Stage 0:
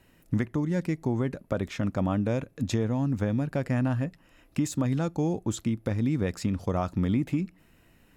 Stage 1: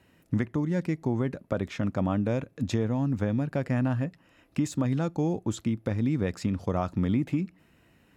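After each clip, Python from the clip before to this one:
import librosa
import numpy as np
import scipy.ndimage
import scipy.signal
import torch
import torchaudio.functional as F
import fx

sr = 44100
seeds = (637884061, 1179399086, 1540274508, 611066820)

y = scipy.signal.sosfilt(scipy.signal.butter(2, 65.0, 'highpass', fs=sr, output='sos'), x)
y = fx.high_shelf(y, sr, hz=7800.0, db=-8.0)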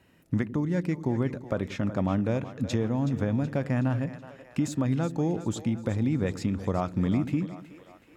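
y = fx.echo_split(x, sr, split_hz=410.0, low_ms=94, high_ms=373, feedback_pct=52, wet_db=-12.5)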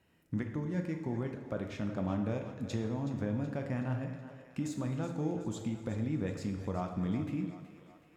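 y = fx.rev_plate(x, sr, seeds[0], rt60_s=1.2, hf_ratio=0.75, predelay_ms=0, drr_db=4.0)
y = F.gain(torch.from_numpy(y), -9.0).numpy()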